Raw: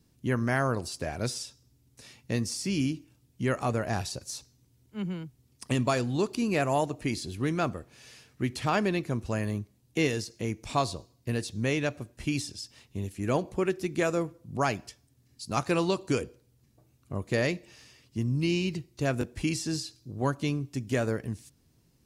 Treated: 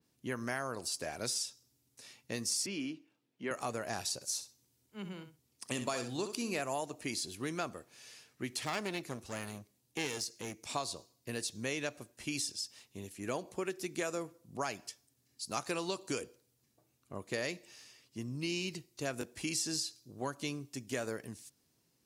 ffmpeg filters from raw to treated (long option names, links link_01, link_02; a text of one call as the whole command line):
ffmpeg -i in.wav -filter_complex "[0:a]asettb=1/sr,asplit=3[link_01][link_02][link_03];[link_01]atrim=end=2.664[link_04];[link_02]atrim=start=2.66:end=3.51,asetpts=PTS-STARTPTS,afade=type=in:duration=0.004:curve=qsin,afade=type=out:start_time=0.846:duration=0.004:curve=qsin,acrossover=split=170 3500:gain=0.0631 1 0.112[link_05][link_06][link_07];[link_05][link_06][link_07]amix=inputs=3:normalize=0[link_08];[link_03]atrim=start=3.506[link_09];[link_04][link_08]acrossfade=duration=0.004:curve1=hsin:curve2=qsin[link_10];[link_10][link_09]acrossfade=duration=0.004:curve1=qsin:curve2=hsin,asettb=1/sr,asplit=3[link_11][link_12][link_13];[link_11]atrim=end=4.154[link_14];[link_12]atrim=start=4.15:end=6.6,asetpts=PTS-STARTPTS,afade=type=in:duration=0.004:curve=qsin,afade=type=out:start_time=2.446:duration=0.004:curve=qsin,aecho=1:1:64|128:0.316|0.0506,atrim=end_sample=108045[link_15];[link_13]atrim=start=6.596[link_16];[link_14][link_15]acrossfade=duration=0.004:curve1=hsin:curve2=qsin[link_17];[link_17][link_16]acrossfade=duration=0.004:curve1=qsin:curve2=hsin,asettb=1/sr,asplit=3[link_18][link_19][link_20];[link_18]atrim=end=8.614[link_21];[link_19]atrim=start=8.61:end=10.64,asetpts=PTS-STARTPTS,afade=type=in:duration=0.004:curve=qsin,afade=type=out:start_time=2.026:duration=0.004:curve=qsin,aeval=exprs='clip(val(0),-1,0.0266)':channel_layout=same[link_22];[link_20]atrim=start=10.636[link_23];[link_21][link_22]acrossfade=duration=0.004:curve1=hsin:curve2=qsin[link_24];[link_24][link_23]acrossfade=duration=0.004:curve1=qsin:curve2=hsin,highpass=frequency=390:poles=1,acompressor=threshold=-28dB:ratio=6,adynamicequalizer=threshold=0.00282:dfrequency=4100:dqfactor=0.7:tfrequency=4100:tqfactor=0.7:attack=5:release=100:ratio=0.375:range=3.5:mode=boostabove:tftype=highshelf,volume=-4dB" out.wav